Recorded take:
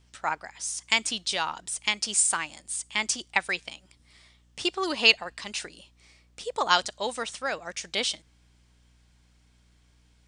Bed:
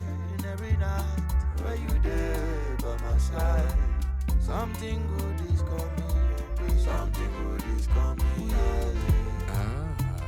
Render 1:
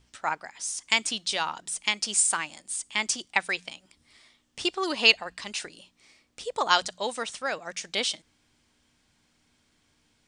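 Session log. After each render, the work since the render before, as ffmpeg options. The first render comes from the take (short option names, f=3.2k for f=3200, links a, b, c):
-af "bandreject=f=60:t=h:w=4,bandreject=f=120:t=h:w=4,bandreject=f=180:t=h:w=4"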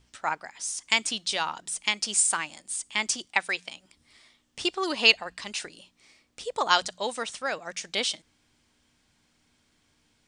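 -filter_complex "[0:a]asettb=1/sr,asplit=3[a][b][c];[a]atrim=end=3.304[d];[b]atrim=start=3.3:end=3.73,asetpts=PTS-STARTPTS,afade=t=in:d=0.004:c=qsin,afade=t=out:st=0.426:d=0.004:c=qsin,lowshelf=f=170:g=-8.5[e];[c]atrim=start=3.726[f];[d][e]acrossfade=d=0.004:c1=hsin:c2=qsin[g];[g][f]acrossfade=d=0.004:c1=qsin:c2=hsin"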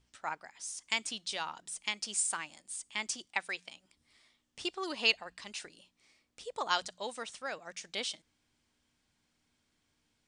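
-af "volume=-9dB"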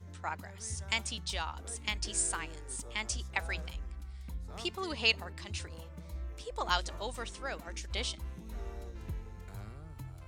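-filter_complex "[1:a]volume=-16.5dB[a];[0:a][a]amix=inputs=2:normalize=0"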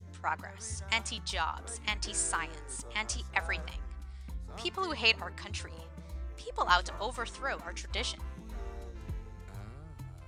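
-af "lowpass=12k,adynamicequalizer=threshold=0.00355:dfrequency=1200:dqfactor=0.86:tfrequency=1200:tqfactor=0.86:attack=5:release=100:ratio=0.375:range=3.5:mode=boostabove:tftype=bell"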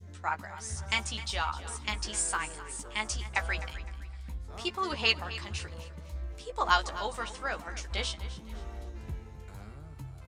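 -filter_complex "[0:a]asplit=2[a][b];[b]adelay=14,volume=-6.5dB[c];[a][c]amix=inputs=2:normalize=0,aecho=1:1:256|512|768:0.178|0.0622|0.0218"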